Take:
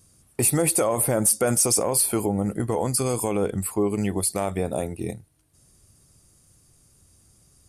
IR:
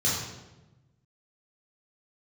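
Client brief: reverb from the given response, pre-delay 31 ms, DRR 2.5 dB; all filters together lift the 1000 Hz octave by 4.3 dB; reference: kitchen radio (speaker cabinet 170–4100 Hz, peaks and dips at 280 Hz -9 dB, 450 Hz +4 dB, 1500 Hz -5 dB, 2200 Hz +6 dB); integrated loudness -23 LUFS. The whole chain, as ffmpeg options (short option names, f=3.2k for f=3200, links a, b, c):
-filter_complex "[0:a]equalizer=f=1k:t=o:g=6,asplit=2[a][b];[1:a]atrim=start_sample=2205,adelay=31[c];[b][c]afir=irnorm=-1:irlink=0,volume=-13.5dB[d];[a][d]amix=inputs=2:normalize=0,highpass=170,equalizer=f=280:t=q:w=4:g=-9,equalizer=f=450:t=q:w=4:g=4,equalizer=f=1.5k:t=q:w=4:g=-5,equalizer=f=2.2k:t=q:w=4:g=6,lowpass=f=4.1k:w=0.5412,lowpass=f=4.1k:w=1.3066,volume=-1dB"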